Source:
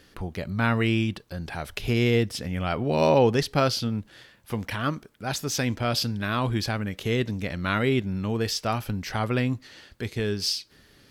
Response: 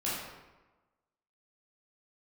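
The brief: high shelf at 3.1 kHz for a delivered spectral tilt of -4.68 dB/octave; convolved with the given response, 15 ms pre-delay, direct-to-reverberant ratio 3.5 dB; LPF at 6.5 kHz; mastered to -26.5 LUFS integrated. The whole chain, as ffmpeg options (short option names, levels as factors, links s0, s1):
-filter_complex "[0:a]lowpass=6500,highshelf=f=3100:g=7.5,asplit=2[s0][s1];[1:a]atrim=start_sample=2205,adelay=15[s2];[s1][s2]afir=irnorm=-1:irlink=0,volume=0.316[s3];[s0][s3]amix=inputs=2:normalize=0,volume=0.75"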